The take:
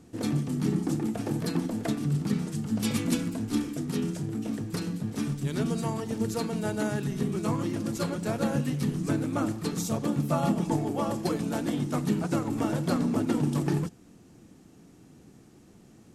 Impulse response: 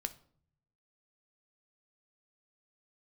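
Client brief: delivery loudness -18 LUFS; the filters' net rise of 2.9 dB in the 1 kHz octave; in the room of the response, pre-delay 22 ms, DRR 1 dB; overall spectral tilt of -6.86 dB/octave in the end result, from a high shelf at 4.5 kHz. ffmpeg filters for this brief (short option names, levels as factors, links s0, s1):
-filter_complex "[0:a]equalizer=f=1000:t=o:g=4,highshelf=f=4500:g=-5.5,asplit=2[s0][s1];[1:a]atrim=start_sample=2205,adelay=22[s2];[s1][s2]afir=irnorm=-1:irlink=0,volume=1[s3];[s0][s3]amix=inputs=2:normalize=0,volume=2.66"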